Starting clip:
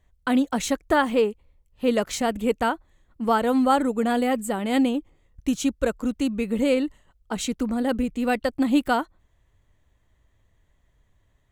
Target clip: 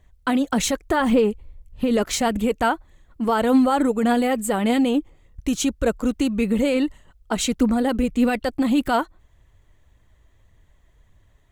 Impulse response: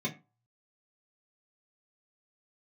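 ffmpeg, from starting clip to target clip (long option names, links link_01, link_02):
-filter_complex "[0:a]asettb=1/sr,asplit=3[link_01][link_02][link_03];[link_01]atrim=end=1.004[link_04];[link_02]atrim=start=1:end=2.03,asetpts=PTS-STARTPTS,afade=type=in:duration=0.004:curve=qsin,afade=type=out:start_time=1.026:duration=0.004:curve=qsin,lowshelf=frequency=220:gain=9.5[link_05];[link_03]atrim=start=2.026[link_06];[link_04][link_05]acrossfade=duration=0.004:curve1=hsin:curve2=qsin[link_07];[link_07][link_06]acrossfade=duration=0.004:curve1=qsin:curve2=hsin,alimiter=limit=-17dB:level=0:latency=1:release=39,aphaser=in_gain=1:out_gain=1:delay=3.2:decay=0.28:speed=1.7:type=triangular,volume=5.5dB"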